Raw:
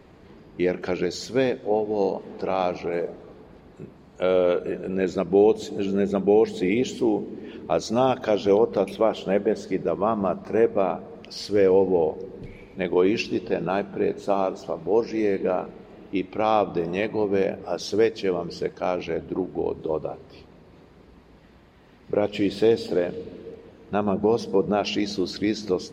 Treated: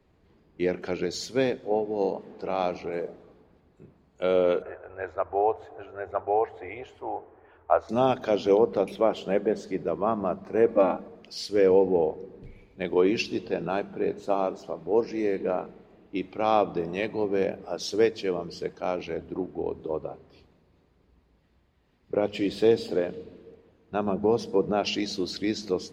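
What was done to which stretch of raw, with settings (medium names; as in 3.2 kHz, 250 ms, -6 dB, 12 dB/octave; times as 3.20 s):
4.62–7.89 s: FFT filter 100 Hz 0 dB, 180 Hz -30 dB, 720 Hz +7 dB, 1.4 kHz +7 dB, 4.5 kHz -21 dB
10.68–11.08 s: comb 3.6 ms, depth 99%
whole clip: hum notches 50/100/150/200 Hz; three bands expanded up and down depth 40%; trim -3 dB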